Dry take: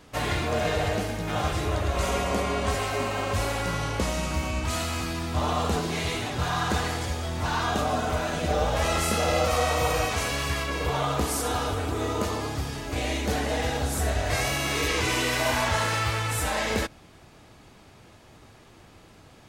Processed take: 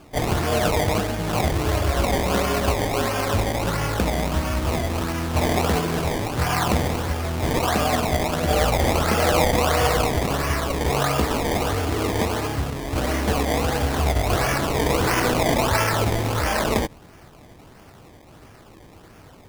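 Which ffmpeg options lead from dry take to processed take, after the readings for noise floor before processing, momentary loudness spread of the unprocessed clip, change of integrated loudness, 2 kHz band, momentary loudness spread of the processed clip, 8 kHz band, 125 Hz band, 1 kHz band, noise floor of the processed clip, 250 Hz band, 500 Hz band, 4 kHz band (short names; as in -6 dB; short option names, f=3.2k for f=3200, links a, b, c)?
-52 dBFS, 5 LU, +4.5 dB, +2.5 dB, 5 LU, +2.5 dB, +5.5 dB, +4.5 dB, -47 dBFS, +6.5 dB, +5.5 dB, +2.5 dB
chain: -af "acrusher=samples=22:mix=1:aa=0.000001:lfo=1:lforange=22:lforate=1.5,volume=5dB"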